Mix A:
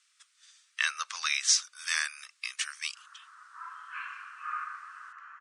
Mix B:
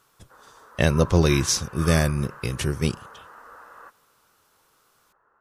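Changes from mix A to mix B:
background: entry -2.65 s; master: remove Chebyshev band-pass 1.2–9.1 kHz, order 4

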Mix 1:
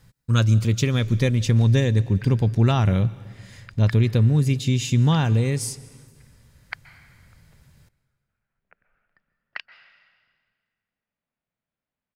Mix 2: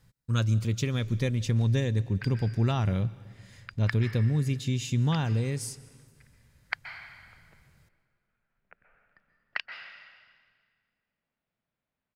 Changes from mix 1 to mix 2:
speech -7.5 dB; background: send +8.5 dB

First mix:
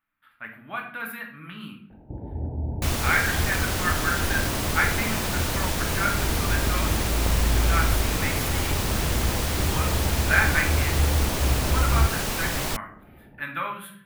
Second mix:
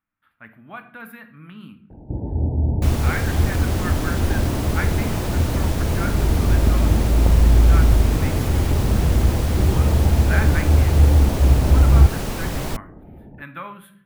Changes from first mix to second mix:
speech: send -8.0 dB; first sound +4.5 dB; master: add tilt shelf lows +5 dB, about 840 Hz

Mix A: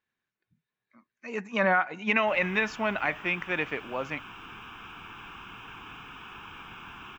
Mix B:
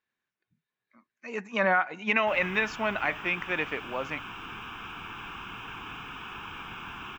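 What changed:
speech: add bass shelf 170 Hz -6 dB; background +4.0 dB

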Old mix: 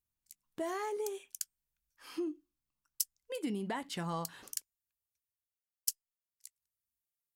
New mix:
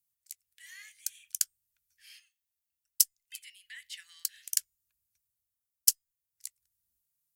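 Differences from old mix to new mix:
speech: add Chebyshev high-pass 1.8 kHz, order 5; background +10.5 dB

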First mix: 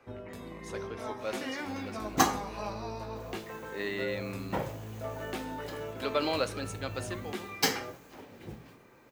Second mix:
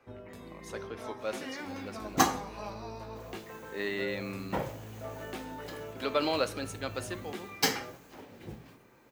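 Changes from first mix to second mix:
speech: remove Chebyshev low-pass 9.7 kHz; first sound -3.5 dB

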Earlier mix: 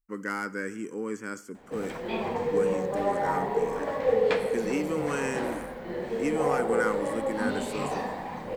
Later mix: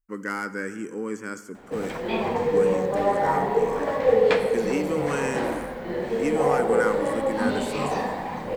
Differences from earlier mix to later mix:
speech: send +11.0 dB; background +5.0 dB

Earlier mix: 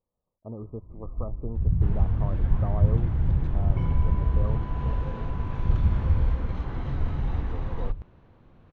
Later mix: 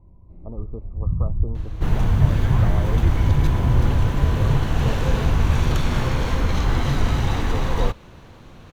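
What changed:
first sound: entry -0.60 s; second sound +10.0 dB; master: remove tape spacing loss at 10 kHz 32 dB

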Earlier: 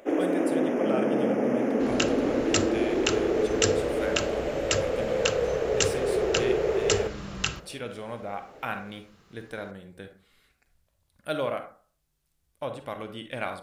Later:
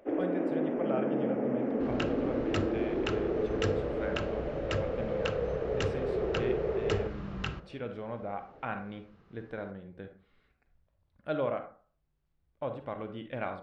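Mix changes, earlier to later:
first sound -4.5 dB; master: add tape spacing loss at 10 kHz 35 dB

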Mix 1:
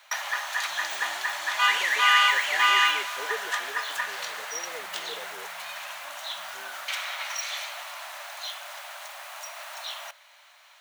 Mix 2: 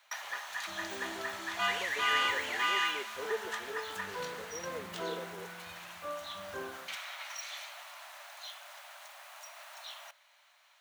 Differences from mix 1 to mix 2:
first sound -10.0 dB; second sound +12.0 dB; master: add bass shelf 89 Hz +6.5 dB

